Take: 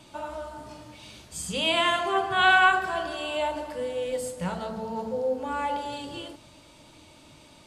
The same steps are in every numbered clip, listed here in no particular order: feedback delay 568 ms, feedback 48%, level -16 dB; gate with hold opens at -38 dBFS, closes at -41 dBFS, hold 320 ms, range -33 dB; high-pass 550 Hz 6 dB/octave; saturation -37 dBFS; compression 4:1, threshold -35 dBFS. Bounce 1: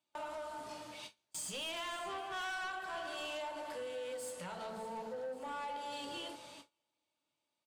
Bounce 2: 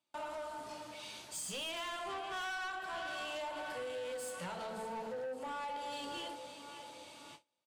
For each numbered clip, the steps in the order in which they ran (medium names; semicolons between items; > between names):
compression > high-pass > saturation > feedback delay > gate with hold; feedback delay > gate with hold > high-pass > compression > saturation